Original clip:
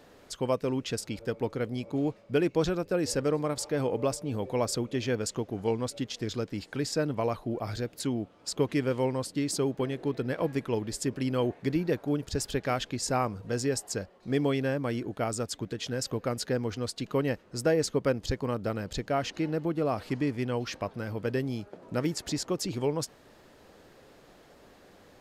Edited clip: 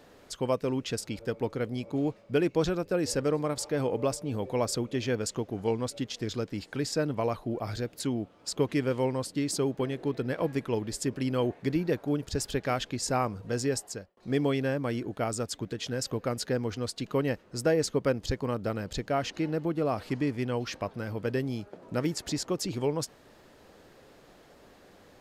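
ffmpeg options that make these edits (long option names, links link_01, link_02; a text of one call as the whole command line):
ffmpeg -i in.wav -filter_complex "[0:a]asplit=2[link_01][link_02];[link_01]atrim=end=14.17,asetpts=PTS-STARTPTS,afade=type=out:start_time=13.76:duration=0.41[link_03];[link_02]atrim=start=14.17,asetpts=PTS-STARTPTS,afade=type=in:duration=0.004:curve=hsin[link_04];[link_03][link_04]concat=n=2:v=0:a=1" out.wav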